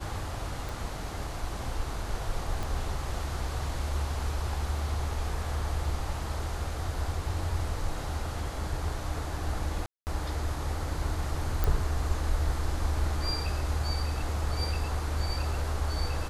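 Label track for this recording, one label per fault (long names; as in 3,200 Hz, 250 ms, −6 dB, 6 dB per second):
0.690000	0.690000	click
2.630000	2.630000	click
9.860000	10.070000	drop-out 209 ms
11.640000	11.640000	click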